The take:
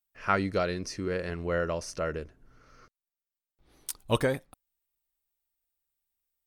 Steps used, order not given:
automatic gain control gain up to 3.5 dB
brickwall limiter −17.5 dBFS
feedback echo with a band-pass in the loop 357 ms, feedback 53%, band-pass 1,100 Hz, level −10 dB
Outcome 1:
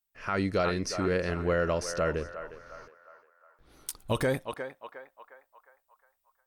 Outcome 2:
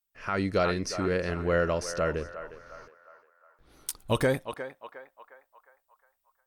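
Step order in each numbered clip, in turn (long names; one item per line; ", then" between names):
feedback echo with a band-pass in the loop, then automatic gain control, then brickwall limiter
feedback echo with a band-pass in the loop, then brickwall limiter, then automatic gain control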